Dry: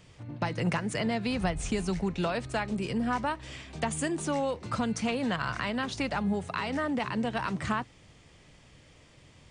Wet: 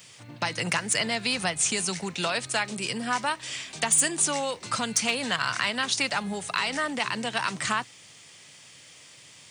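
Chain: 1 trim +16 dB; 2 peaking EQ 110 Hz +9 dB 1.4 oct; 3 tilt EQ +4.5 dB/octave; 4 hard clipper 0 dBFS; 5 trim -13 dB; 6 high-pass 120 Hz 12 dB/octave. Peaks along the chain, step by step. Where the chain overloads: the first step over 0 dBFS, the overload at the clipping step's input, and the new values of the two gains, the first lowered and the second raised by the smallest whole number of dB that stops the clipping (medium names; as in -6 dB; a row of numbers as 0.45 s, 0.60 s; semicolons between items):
+0.5 dBFS, +3.0 dBFS, +6.5 dBFS, 0.0 dBFS, -13.0 dBFS, -12.0 dBFS; step 1, 6.5 dB; step 1 +9 dB, step 5 -6 dB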